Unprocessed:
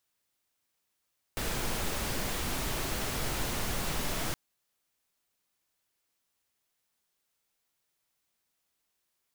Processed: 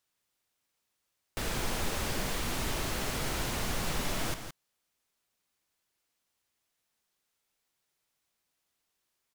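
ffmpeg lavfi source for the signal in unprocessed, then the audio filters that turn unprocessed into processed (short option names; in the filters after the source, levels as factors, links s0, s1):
-f lavfi -i "anoisesrc=c=pink:a=0.122:d=2.97:r=44100:seed=1"
-filter_complex "[0:a]highshelf=f=12000:g=-5.5,asplit=2[s0][s1];[s1]aecho=0:1:167:0.355[s2];[s0][s2]amix=inputs=2:normalize=0"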